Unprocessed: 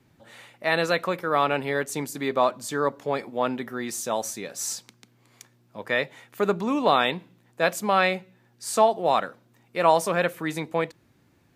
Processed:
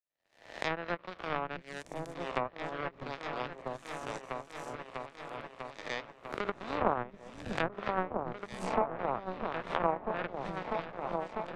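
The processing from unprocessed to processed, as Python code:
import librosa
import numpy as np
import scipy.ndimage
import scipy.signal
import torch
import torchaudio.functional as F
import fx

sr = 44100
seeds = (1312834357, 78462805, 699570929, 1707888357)

p1 = fx.spec_swells(x, sr, rise_s=1.3)
p2 = 10.0 ** (-19.5 / 20.0) * np.tanh(p1 / 10.0 ** (-19.5 / 20.0))
p3 = p1 + (p2 * 10.0 ** (-10.5 / 20.0))
p4 = fx.power_curve(p3, sr, exponent=3.0)
p5 = fx.env_lowpass_down(p4, sr, base_hz=1400.0, full_db=-29.0)
p6 = p5 + fx.echo_opening(p5, sr, ms=647, hz=200, octaves=2, feedback_pct=70, wet_db=-3, dry=0)
p7 = fx.transient(p6, sr, attack_db=1, sustain_db=-4)
p8 = fx.env_lowpass_down(p7, sr, base_hz=1400.0, full_db=-26.0)
y = fx.band_squash(p8, sr, depth_pct=40)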